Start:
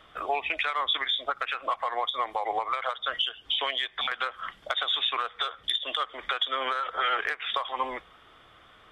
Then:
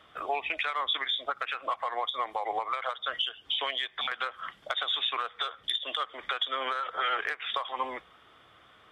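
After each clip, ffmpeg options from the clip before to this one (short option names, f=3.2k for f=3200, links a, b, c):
-af "highpass=70,volume=-2.5dB"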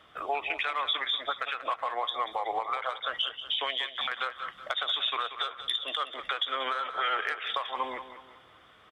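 -af "aecho=1:1:186|372|558|744:0.266|0.106|0.0426|0.017"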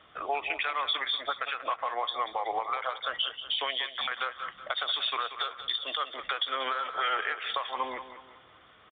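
-af "aresample=8000,aresample=44100"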